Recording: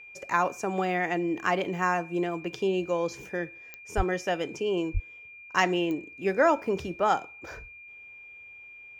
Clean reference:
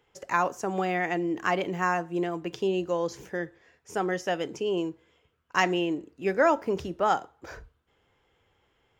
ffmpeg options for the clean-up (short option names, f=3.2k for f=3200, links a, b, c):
-filter_complex "[0:a]adeclick=t=4,bandreject=f=2.4k:w=30,asplit=3[a][b][c];[a]afade=t=out:st=3.96:d=0.02[d];[b]highpass=f=140:w=0.5412,highpass=f=140:w=1.3066,afade=t=in:st=3.96:d=0.02,afade=t=out:st=4.08:d=0.02[e];[c]afade=t=in:st=4.08:d=0.02[f];[d][e][f]amix=inputs=3:normalize=0,asplit=3[g][h][i];[g]afade=t=out:st=4.93:d=0.02[j];[h]highpass=f=140:w=0.5412,highpass=f=140:w=1.3066,afade=t=in:st=4.93:d=0.02,afade=t=out:st=5.05:d=0.02[k];[i]afade=t=in:st=5.05:d=0.02[l];[j][k][l]amix=inputs=3:normalize=0"